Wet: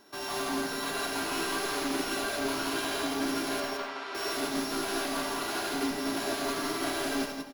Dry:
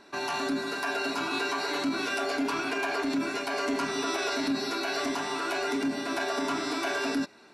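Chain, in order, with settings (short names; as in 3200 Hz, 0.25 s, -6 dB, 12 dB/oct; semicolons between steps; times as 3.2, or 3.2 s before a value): sample sorter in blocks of 8 samples; soft clip -34 dBFS, distortion -8 dB; 3.6–4.15 BPF 560–3200 Hz; on a send: echo 0.169 s -3.5 dB; on the sum: digital reverb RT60 1 s, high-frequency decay 0.6×, pre-delay 30 ms, DRR 1.5 dB; upward expander 1.5:1, over -45 dBFS; gain +3 dB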